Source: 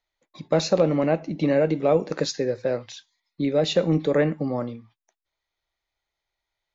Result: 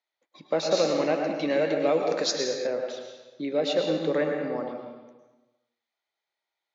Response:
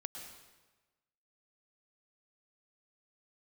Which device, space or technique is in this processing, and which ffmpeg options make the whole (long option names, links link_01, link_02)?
supermarket ceiling speaker: -filter_complex "[0:a]highpass=300,lowpass=6200[link_01];[1:a]atrim=start_sample=2205[link_02];[link_01][link_02]afir=irnorm=-1:irlink=0,asettb=1/sr,asplit=3[link_03][link_04][link_05];[link_03]atrim=end=0.714[link_06];[link_04]atrim=start=0.71:end=2.67,asetpts=PTS-STARTPTS,afade=type=in:duration=0.004:curve=qsin,afade=type=out:start_time=1.956:duration=0.004:curve=qsin,highshelf=frequency=2600:gain=10[link_07];[link_05]atrim=start=2.666[link_08];[link_06][link_07]acrossfade=duration=0.004:curve1=hsin:curve2=qsin[link_09];[link_09][link_08]acrossfade=duration=0.004:curve1=qsin:curve2=hsin"